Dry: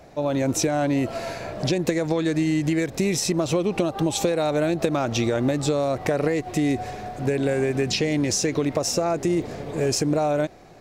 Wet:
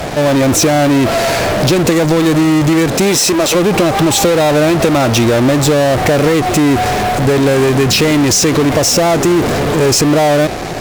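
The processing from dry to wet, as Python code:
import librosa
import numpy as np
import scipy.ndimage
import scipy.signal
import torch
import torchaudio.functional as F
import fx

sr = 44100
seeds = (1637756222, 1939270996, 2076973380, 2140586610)

p1 = fx.highpass(x, sr, hz=fx.line((2.86, 120.0), (3.54, 480.0)), slope=12, at=(2.86, 3.54), fade=0.02)
p2 = fx.fuzz(p1, sr, gain_db=48.0, gate_db=-51.0)
p3 = p1 + F.gain(torch.from_numpy(p2), -7.0).numpy()
y = F.gain(torch.from_numpy(p3), 5.5).numpy()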